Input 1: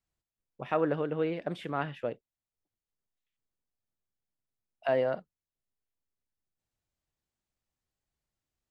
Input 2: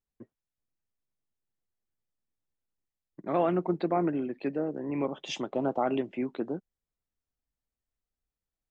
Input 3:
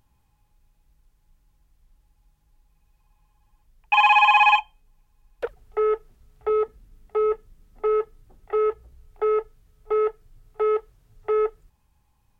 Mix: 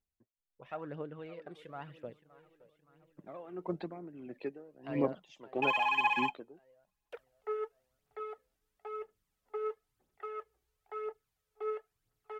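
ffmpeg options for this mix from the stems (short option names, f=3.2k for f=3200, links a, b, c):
-filter_complex "[0:a]volume=-14dB,asplit=2[a][b];[b]volume=-17.5dB[c];[1:a]aeval=exprs='val(0)*pow(10,-20*(0.5-0.5*cos(2*PI*1.6*n/s))/20)':c=same,volume=-4.5dB[d];[2:a]highpass=f=750:p=1,adelay=1700,volume=-13.5dB[e];[c]aecho=0:1:569|1138|1707|2276|2845|3414|3983|4552:1|0.54|0.292|0.157|0.085|0.0459|0.0248|0.0134[f];[a][d][e][f]amix=inputs=4:normalize=0,aphaser=in_gain=1:out_gain=1:delay=2.7:decay=0.5:speed=0.99:type=triangular"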